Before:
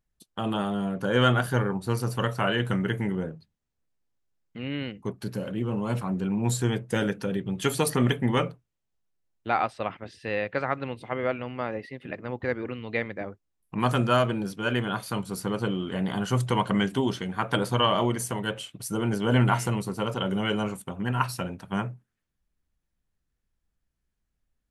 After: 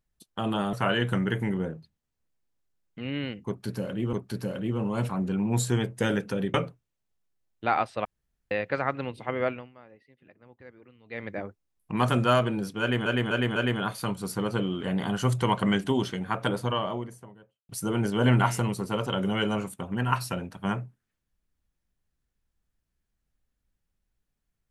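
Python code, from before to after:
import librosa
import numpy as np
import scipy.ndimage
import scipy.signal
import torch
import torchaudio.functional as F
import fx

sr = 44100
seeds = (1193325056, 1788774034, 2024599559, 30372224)

y = fx.studio_fade_out(x, sr, start_s=17.14, length_s=1.63)
y = fx.edit(y, sr, fx.cut(start_s=0.73, length_s=1.58),
    fx.repeat(start_s=5.05, length_s=0.66, count=2),
    fx.cut(start_s=7.46, length_s=0.91),
    fx.room_tone_fill(start_s=9.88, length_s=0.46),
    fx.fade_down_up(start_s=11.34, length_s=1.76, db=-20.5, fade_s=0.25, curve='qua'),
    fx.repeat(start_s=14.64, length_s=0.25, count=4), tone=tone)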